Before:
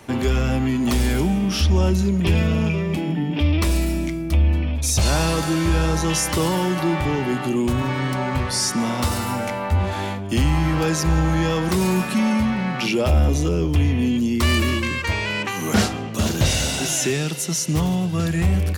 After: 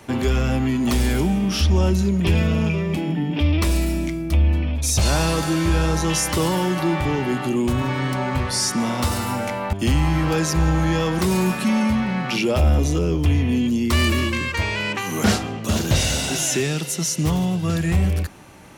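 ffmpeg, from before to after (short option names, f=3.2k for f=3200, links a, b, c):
-filter_complex "[0:a]asplit=2[a][b];[a]atrim=end=9.732[c];[b]atrim=start=10.228[d];[c][d]acrossfade=d=0.004:c1=hsin:c2=hsin"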